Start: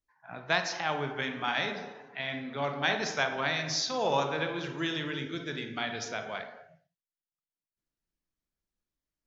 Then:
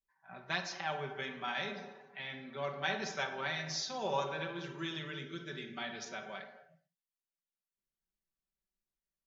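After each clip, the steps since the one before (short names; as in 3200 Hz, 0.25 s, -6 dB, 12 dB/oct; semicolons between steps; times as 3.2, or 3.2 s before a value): comb 5.2 ms, depth 75%; gain -9 dB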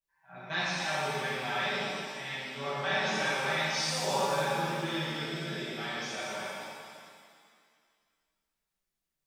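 shimmer reverb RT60 2 s, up +7 st, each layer -8 dB, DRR -11 dB; gain -5 dB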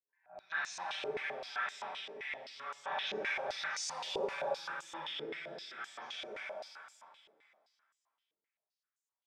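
stepped band-pass 7.7 Hz 430–7100 Hz; gain +2.5 dB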